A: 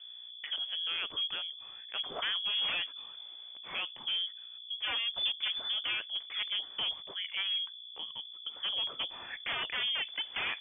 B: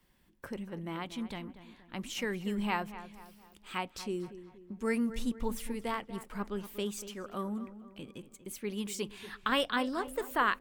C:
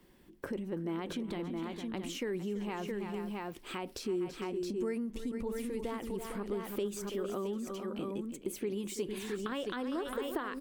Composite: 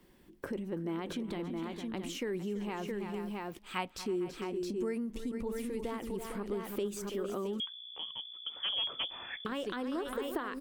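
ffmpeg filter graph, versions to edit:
ffmpeg -i take0.wav -i take1.wav -i take2.wav -filter_complex "[2:a]asplit=3[link_01][link_02][link_03];[link_01]atrim=end=3.592[link_04];[1:a]atrim=start=3.588:end=4.062[link_05];[link_02]atrim=start=4.058:end=7.602[link_06];[0:a]atrim=start=7.598:end=9.452[link_07];[link_03]atrim=start=9.448[link_08];[link_04][link_05]acrossfade=duration=0.004:curve1=hsin:curve2=hsin[link_09];[link_09][link_06]acrossfade=duration=0.004:curve1=hsin:curve2=hsin[link_10];[link_10][link_07]acrossfade=duration=0.004:curve1=hsin:curve2=hsin[link_11];[link_11][link_08]acrossfade=duration=0.004:curve1=hsin:curve2=hsin" out.wav

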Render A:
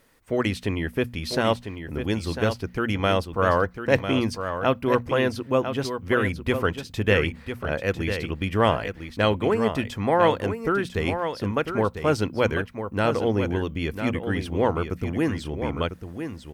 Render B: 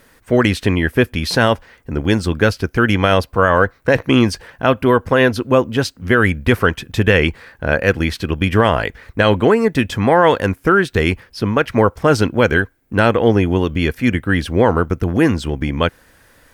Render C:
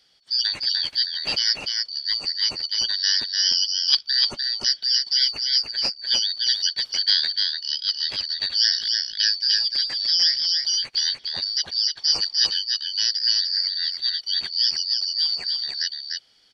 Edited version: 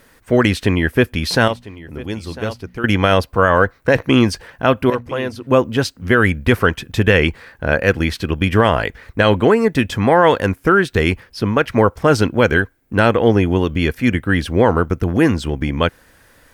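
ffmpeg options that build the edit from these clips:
ffmpeg -i take0.wav -i take1.wav -filter_complex "[0:a]asplit=2[link_01][link_02];[1:a]asplit=3[link_03][link_04][link_05];[link_03]atrim=end=1.482[link_06];[link_01]atrim=start=1.478:end=2.842[link_07];[link_04]atrim=start=2.838:end=4.902[link_08];[link_02]atrim=start=4.898:end=5.472[link_09];[link_05]atrim=start=5.468[link_10];[link_06][link_07]acrossfade=duration=0.004:curve1=hsin:curve2=hsin[link_11];[link_11][link_08]acrossfade=duration=0.004:curve1=hsin:curve2=hsin[link_12];[link_12][link_09]acrossfade=duration=0.004:curve1=hsin:curve2=hsin[link_13];[link_13][link_10]acrossfade=duration=0.004:curve1=hsin:curve2=hsin" out.wav

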